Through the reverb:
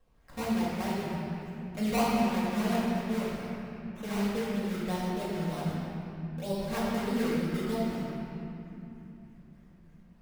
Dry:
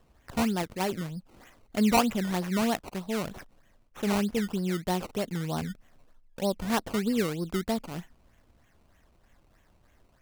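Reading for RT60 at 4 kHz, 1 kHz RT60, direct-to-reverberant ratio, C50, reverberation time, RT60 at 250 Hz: 2.1 s, 2.9 s, -9.0 dB, -3.0 dB, 3.0 s, 5.1 s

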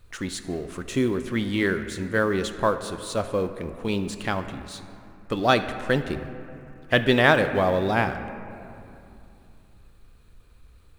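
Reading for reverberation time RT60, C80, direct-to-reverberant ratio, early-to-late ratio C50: 2.8 s, 11.0 dB, 9.0 dB, 10.0 dB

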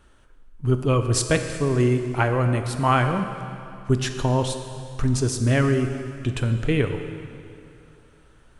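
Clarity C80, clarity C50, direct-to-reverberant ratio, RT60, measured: 8.5 dB, 7.5 dB, 6.5 dB, 2.7 s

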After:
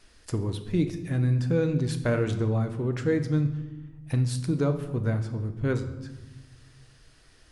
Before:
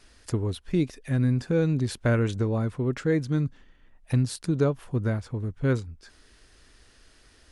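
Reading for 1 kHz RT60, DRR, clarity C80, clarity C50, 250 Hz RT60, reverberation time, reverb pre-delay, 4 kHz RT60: 1.0 s, 6.5 dB, 12.5 dB, 10.5 dB, 1.7 s, 1.1 s, 6 ms, 0.80 s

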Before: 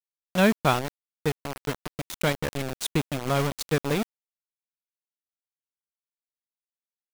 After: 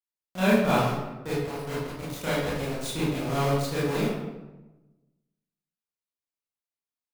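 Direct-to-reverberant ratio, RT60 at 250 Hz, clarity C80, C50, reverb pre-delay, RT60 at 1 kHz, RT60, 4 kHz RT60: -11.0 dB, 1.2 s, 2.0 dB, -1.5 dB, 22 ms, 1.0 s, 1.1 s, 0.70 s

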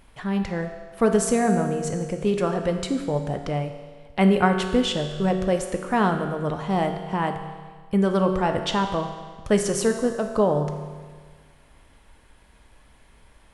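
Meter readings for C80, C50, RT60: 8.5 dB, 7.0 dB, 1.6 s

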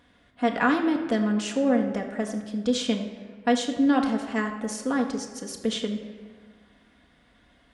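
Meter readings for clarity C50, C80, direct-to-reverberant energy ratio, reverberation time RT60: 7.5 dB, 9.5 dB, 1.5 dB, 1.5 s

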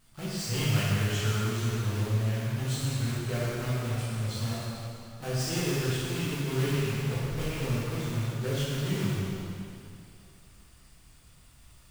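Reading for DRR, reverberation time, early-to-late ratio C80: -9.0 dB, 2.5 s, -2.0 dB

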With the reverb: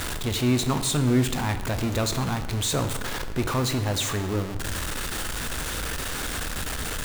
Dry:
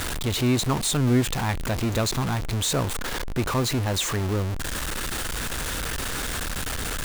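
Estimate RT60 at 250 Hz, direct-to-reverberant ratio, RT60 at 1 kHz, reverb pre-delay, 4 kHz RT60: 1.2 s, 8.0 dB, 1.1 s, 10 ms, 0.85 s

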